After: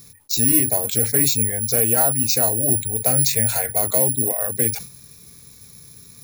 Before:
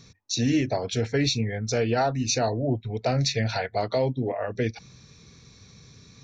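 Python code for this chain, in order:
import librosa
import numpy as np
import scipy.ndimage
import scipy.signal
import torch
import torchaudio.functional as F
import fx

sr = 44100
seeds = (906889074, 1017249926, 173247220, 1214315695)

y = (np.kron(x[::4], np.eye(4)[0]) * 4)[:len(x)]
y = fx.sustainer(y, sr, db_per_s=110.0)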